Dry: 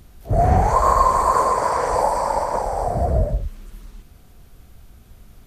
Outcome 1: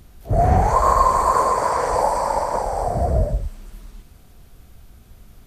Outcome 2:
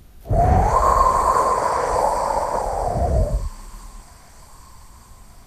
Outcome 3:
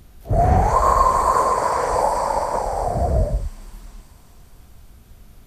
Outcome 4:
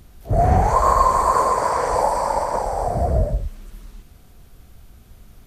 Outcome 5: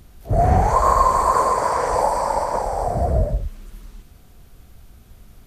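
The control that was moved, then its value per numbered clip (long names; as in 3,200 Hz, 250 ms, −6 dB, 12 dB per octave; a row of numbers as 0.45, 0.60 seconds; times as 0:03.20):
delay with a high-pass on its return, delay time: 213, 1,221, 422, 129, 86 milliseconds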